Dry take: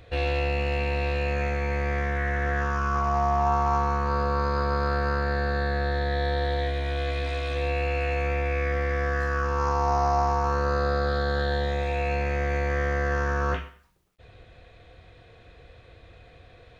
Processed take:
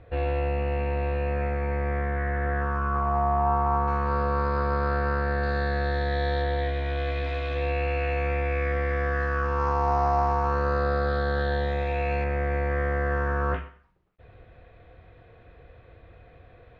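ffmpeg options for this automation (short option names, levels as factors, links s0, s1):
-af "asetnsamples=n=441:p=0,asendcmd='3.88 lowpass f 2800;5.43 lowpass f 4900;6.42 lowpass f 3200;12.24 lowpass f 2000',lowpass=1600"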